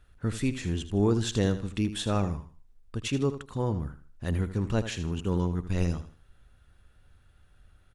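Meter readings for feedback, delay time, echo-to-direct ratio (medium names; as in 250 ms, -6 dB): 30%, 79 ms, -11.5 dB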